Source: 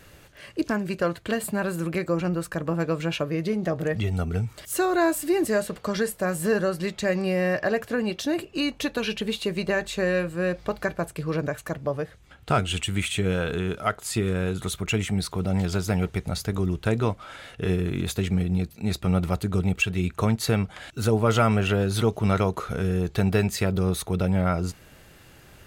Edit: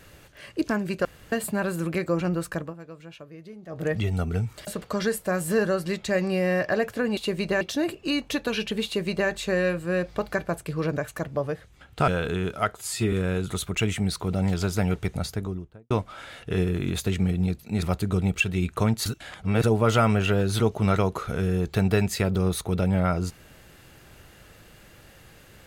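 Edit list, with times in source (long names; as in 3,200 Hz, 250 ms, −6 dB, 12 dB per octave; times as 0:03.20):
0:01.05–0:01.32: fill with room tone
0:02.55–0:03.87: duck −17 dB, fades 0.19 s
0:04.67–0:05.61: remove
0:09.35–0:09.79: duplicate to 0:08.11
0:12.58–0:13.32: remove
0:13.99–0:14.24: time-stretch 1.5×
0:16.23–0:17.02: fade out and dull
0:18.94–0:19.24: remove
0:20.47–0:21.05: reverse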